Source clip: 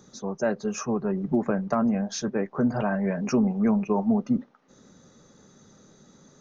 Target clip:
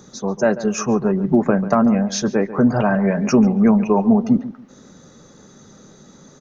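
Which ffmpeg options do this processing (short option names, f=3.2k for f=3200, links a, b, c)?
-filter_complex "[0:a]asplit=2[a][b];[b]adelay=141,lowpass=f=2.6k:p=1,volume=-14.5dB,asplit=2[c][d];[d]adelay=141,lowpass=f=2.6k:p=1,volume=0.24,asplit=2[e][f];[f]adelay=141,lowpass=f=2.6k:p=1,volume=0.24[g];[a][c][e][g]amix=inputs=4:normalize=0,volume=8.5dB"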